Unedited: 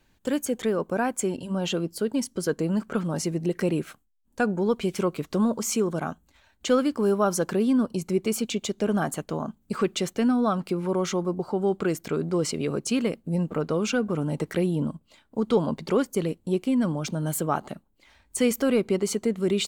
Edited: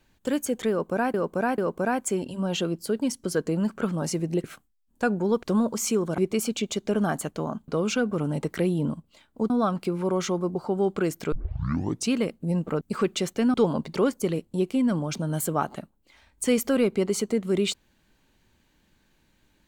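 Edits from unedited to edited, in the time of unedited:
0.7–1.14 loop, 3 plays
3.56–3.81 cut
4.8–5.28 cut
6.03–8.11 cut
9.61–10.34 swap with 13.65–15.47
12.16 tape start 0.77 s

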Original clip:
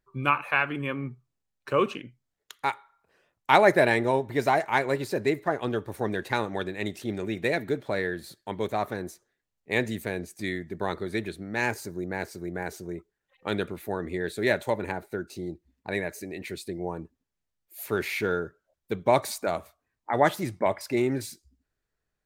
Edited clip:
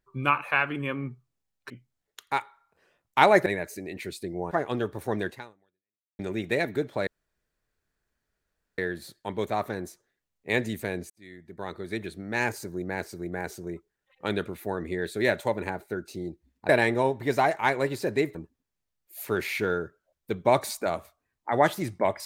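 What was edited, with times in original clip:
1.7–2.02 cut
3.78–5.44 swap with 15.91–16.96
6.21–7.12 fade out exponential
8 insert room tone 1.71 s
10.32–11.49 fade in

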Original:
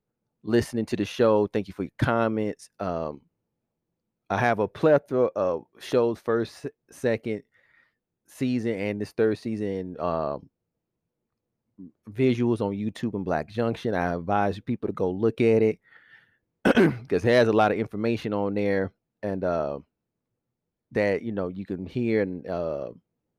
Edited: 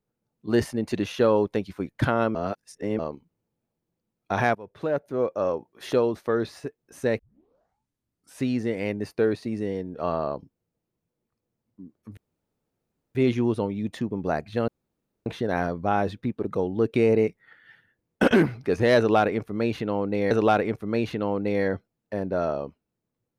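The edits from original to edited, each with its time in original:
2.35–2.99 reverse
4.55–5.48 fade in, from -22 dB
7.19 tape start 1.25 s
12.17 insert room tone 0.98 s
13.7 insert room tone 0.58 s
17.42–18.75 loop, 2 plays

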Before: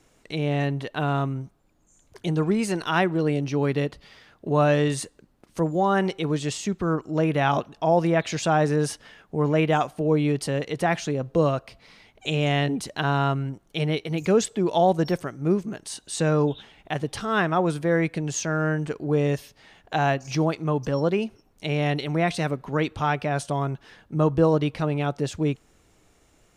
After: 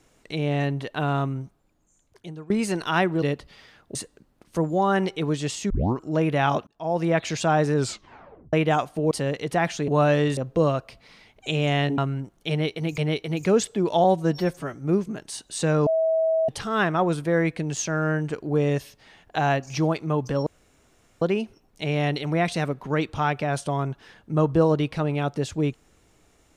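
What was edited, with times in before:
1.43–2.5 fade out, to -22.5 dB
3.22–3.75 cut
4.48–4.97 move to 11.16
6.72 tape start 0.28 s
7.69–8.15 fade in
8.77 tape stop 0.78 s
10.13–10.39 cut
12.77–13.27 cut
13.79–14.27 loop, 2 plays
14.85–15.32 stretch 1.5×
16.44–17.06 bleep 646 Hz -18.5 dBFS
21.04 insert room tone 0.75 s

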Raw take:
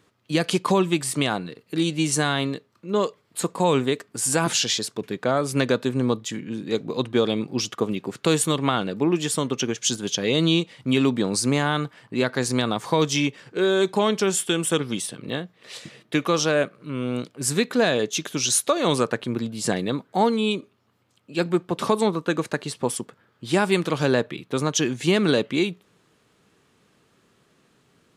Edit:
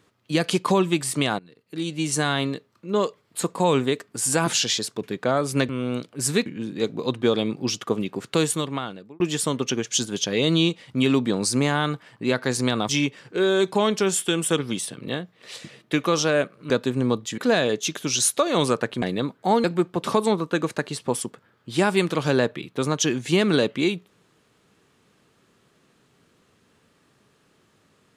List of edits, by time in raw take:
1.39–2.32 fade in linear, from -20.5 dB
5.69–6.37 swap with 16.91–17.68
8.2–9.11 fade out
12.8–13.1 cut
19.32–19.72 cut
20.34–21.39 cut

